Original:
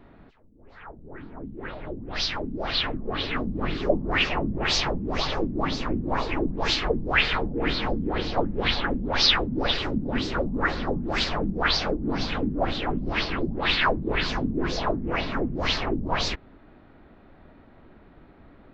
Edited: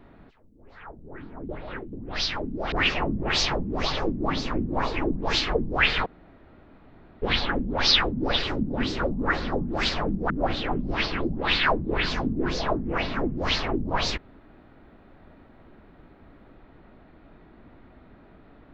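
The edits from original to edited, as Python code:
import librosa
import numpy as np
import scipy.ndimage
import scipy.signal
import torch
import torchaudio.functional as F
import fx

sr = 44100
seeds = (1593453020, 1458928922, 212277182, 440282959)

y = fx.edit(x, sr, fx.reverse_span(start_s=1.49, length_s=0.44),
    fx.cut(start_s=2.72, length_s=1.35),
    fx.room_tone_fill(start_s=7.41, length_s=1.16),
    fx.cut(start_s=11.65, length_s=0.83), tone=tone)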